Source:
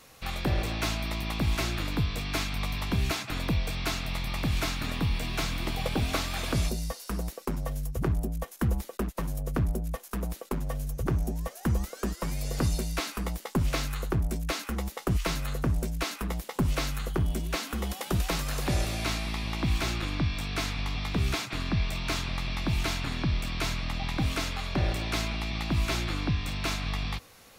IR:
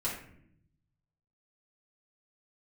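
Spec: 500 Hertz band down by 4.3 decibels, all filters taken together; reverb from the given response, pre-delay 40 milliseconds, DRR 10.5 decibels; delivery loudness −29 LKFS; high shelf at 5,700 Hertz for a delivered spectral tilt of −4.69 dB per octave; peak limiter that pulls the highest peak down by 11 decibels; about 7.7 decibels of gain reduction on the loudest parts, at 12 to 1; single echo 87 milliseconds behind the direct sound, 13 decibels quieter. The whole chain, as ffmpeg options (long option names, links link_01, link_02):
-filter_complex "[0:a]equalizer=frequency=500:width_type=o:gain=-6,highshelf=frequency=5700:gain=-3.5,acompressor=threshold=-30dB:ratio=12,alimiter=level_in=6.5dB:limit=-24dB:level=0:latency=1,volume=-6.5dB,aecho=1:1:87:0.224,asplit=2[link_01][link_02];[1:a]atrim=start_sample=2205,adelay=40[link_03];[link_02][link_03]afir=irnorm=-1:irlink=0,volume=-15dB[link_04];[link_01][link_04]amix=inputs=2:normalize=0,volume=10dB"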